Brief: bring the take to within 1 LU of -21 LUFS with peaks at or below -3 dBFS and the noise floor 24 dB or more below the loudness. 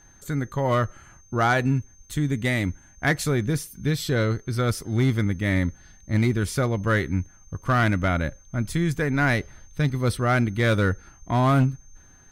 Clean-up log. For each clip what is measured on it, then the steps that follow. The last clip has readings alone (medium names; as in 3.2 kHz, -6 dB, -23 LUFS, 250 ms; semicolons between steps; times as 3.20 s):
clipped samples 0.4%; clipping level -13.5 dBFS; steady tone 6.3 kHz; tone level -54 dBFS; loudness -24.5 LUFS; peak level -13.5 dBFS; loudness target -21.0 LUFS
-> clip repair -13.5 dBFS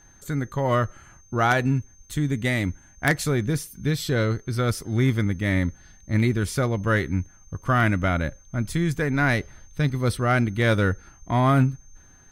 clipped samples 0.0%; steady tone 6.3 kHz; tone level -54 dBFS
-> band-stop 6.3 kHz, Q 30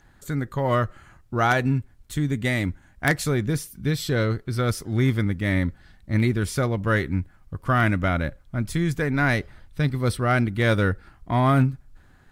steady tone not found; loudness -24.0 LUFS; peak level -4.5 dBFS; loudness target -21.0 LUFS
-> trim +3 dB; peak limiter -3 dBFS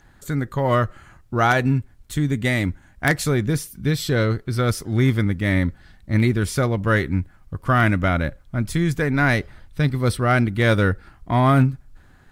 loudness -21.0 LUFS; peak level -3.0 dBFS; noise floor -52 dBFS